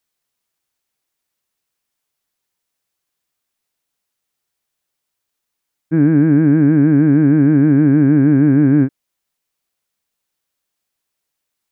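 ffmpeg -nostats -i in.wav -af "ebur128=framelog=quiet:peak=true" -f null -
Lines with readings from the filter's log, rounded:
Integrated loudness:
  I:         -12.3 LUFS
  Threshold: -22.3 LUFS
Loudness range:
  LRA:         9.1 LU
  Threshold: -34.8 LUFS
  LRA low:   -21.2 LUFS
  LRA high:  -12.1 LUFS
True peak:
  Peak:       -4.0 dBFS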